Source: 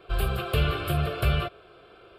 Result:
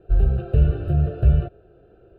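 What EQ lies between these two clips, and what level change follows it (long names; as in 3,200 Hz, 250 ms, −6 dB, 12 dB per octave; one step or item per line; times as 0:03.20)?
moving average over 40 samples
low-shelf EQ 120 Hz +9 dB
+2.5 dB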